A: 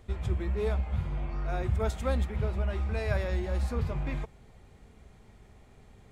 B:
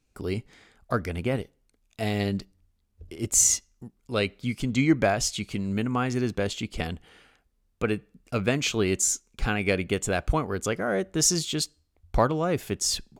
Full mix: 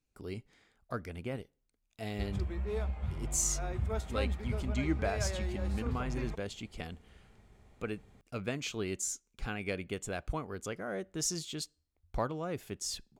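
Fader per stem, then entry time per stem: -5.5, -11.5 dB; 2.10, 0.00 s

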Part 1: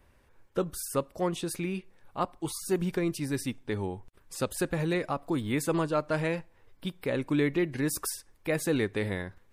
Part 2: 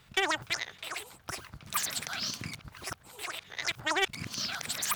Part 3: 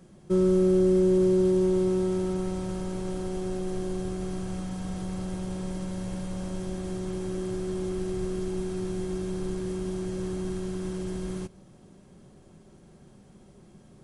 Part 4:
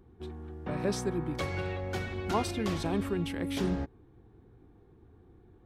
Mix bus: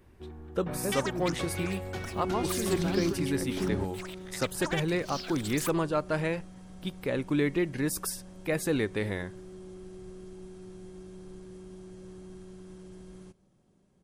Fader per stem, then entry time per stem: -0.5, -6.5, -14.5, -2.5 dB; 0.00, 0.75, 1.85, 0.00 s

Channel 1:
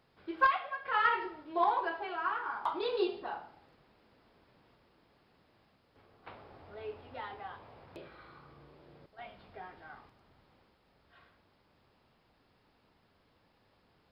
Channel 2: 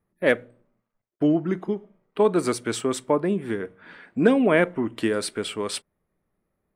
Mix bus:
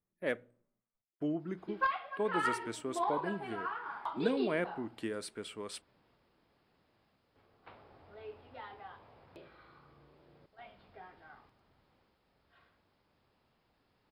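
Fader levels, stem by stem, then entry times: -5.0, -14.5 dB; 1.40, 0.00 s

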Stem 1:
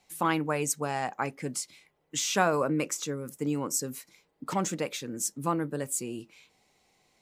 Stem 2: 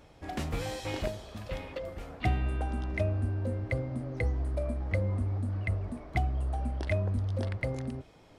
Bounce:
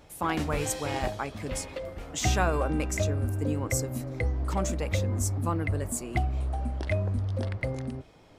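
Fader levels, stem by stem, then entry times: -2.5, +1.5 dB; 0.00, 0.00 s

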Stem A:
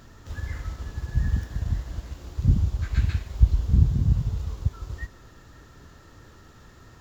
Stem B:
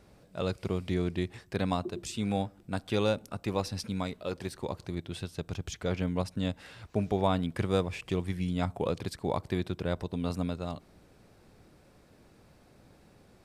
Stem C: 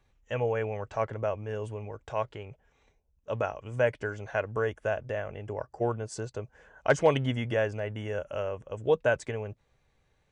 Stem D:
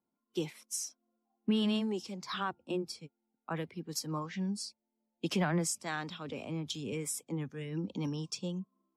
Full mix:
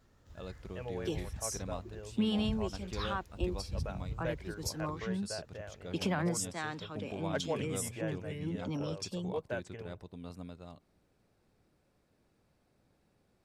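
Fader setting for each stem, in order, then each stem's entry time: -19.0, -13.5, -13.0, -1.5 dB; 0.00, 0.00, 0.45, 0.70 s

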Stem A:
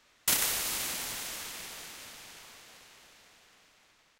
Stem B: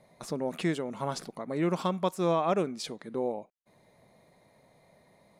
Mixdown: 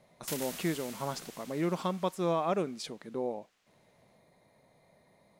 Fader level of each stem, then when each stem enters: -12.5, -3.0 dB; 0.00, 0.00 s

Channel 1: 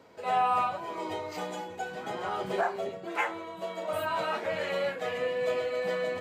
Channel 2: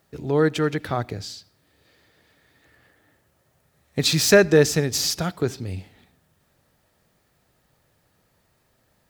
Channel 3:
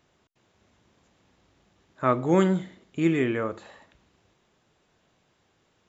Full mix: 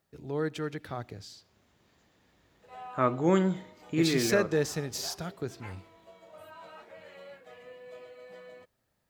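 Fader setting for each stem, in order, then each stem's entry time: -18.0, -12.0, -3.5 dB; 2.45, 0.00, 0.95 s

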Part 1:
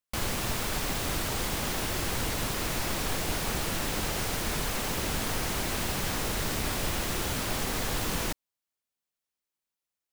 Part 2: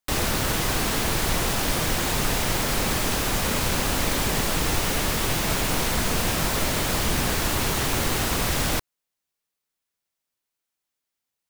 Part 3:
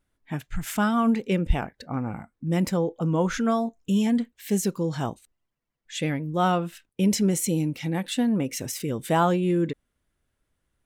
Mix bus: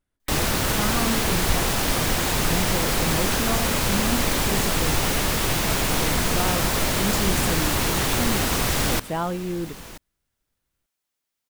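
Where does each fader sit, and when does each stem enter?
-9.5, +1.5, -5.5 dB; 1.65, 0.20, 0.00 s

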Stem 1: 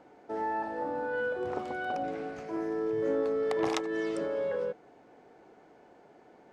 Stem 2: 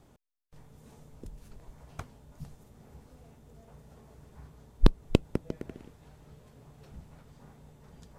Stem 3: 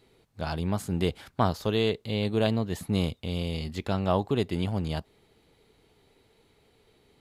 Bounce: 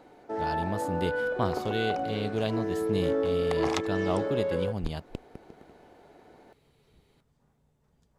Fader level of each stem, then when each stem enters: +2.0, -15.5, -4.5 dB; 0.00, 0.00, 0.00 s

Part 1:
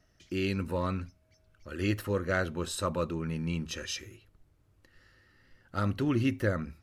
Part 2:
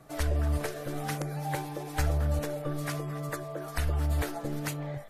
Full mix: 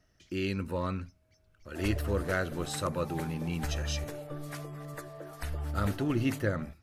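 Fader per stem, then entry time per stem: -1.5, -7.0 dB; 0.00, 1.65 s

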